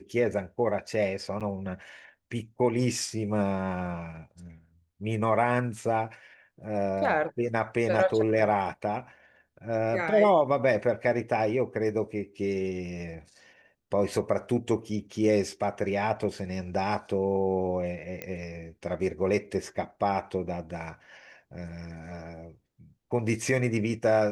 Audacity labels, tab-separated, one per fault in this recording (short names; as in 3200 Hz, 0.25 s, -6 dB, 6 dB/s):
1.400000	1.410000	gap 7.4 ms
18.220000	18.220000	pop -19 dBFS